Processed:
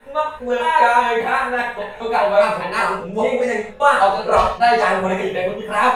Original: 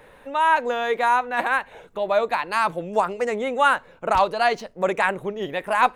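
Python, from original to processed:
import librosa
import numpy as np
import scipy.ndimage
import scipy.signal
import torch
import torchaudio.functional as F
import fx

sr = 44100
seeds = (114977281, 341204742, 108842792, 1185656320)

y = fx.block_reorder(x, sr, ms=200.0, group=2)
y = fx.chorus_voices(y, sr, voices=6, hz=0.48, base_ms=17, depth_ms=1.2, mix_pct=60)
y = fx.rev_gated(y, sr, seeds[0], gate_ms=200, shape='falling', drr_db=-4.0)
y = y * 10.0 ** (2.5 / 20.0)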